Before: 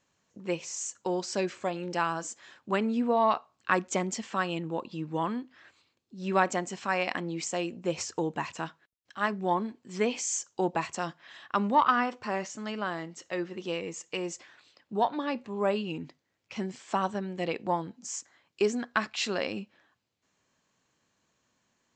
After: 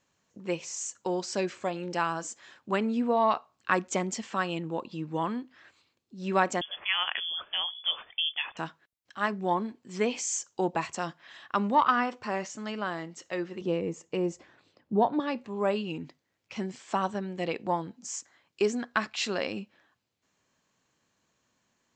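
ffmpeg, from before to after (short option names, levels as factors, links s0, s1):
-filter_complex "[0:a]asettb=1/sr,asplit=3[s0][s1][s2];[s0]atrim=end=6.614[s3];[s1]atrim=start=6.61:end=8.57,asetpts=PTS-STARTPTS,afade=t=in:d=0.004:c=qsin,afade=t=out:st=1.956:d=0.004:c=qsin,lowpass=f=3100:t=q:w=0.5098,lowpass=f=3100:t=q:w=0.6013,lowpass=f=3100:t=q:w=0.9,lowpass=f=3100:t=q:w=2.563,afreqshift=-3600[s4];[s2]atrim=start=8.566[s5];[s3][s4]acrossfade=d=0.004:c1=hsin:c2=qsin[s6];[s6][s5]acrossfade=d=0.004:c1=qsin:c2=hsin,asettb=1/sr,asplit=3[s7][s8][s9];[s7]atrim=end=13.614[s10];[s8]atrim=start=13.61:end=15.2,asetpts=PTS-STARTPTS,afade=t=in:d=0.004:c=qsin,afade=t=out:st=1.586:d=0.004:c=qsin,tiltshelf=f=870:g=8.5[s11];[s9]atrim=start=15.196[s12];[s10][s11]acrossfade=d=0.004:c1=hsin:c2=qsin[s13];[s13][s12]acrossfade=d=0.004:c1=qsin:c2=hsin"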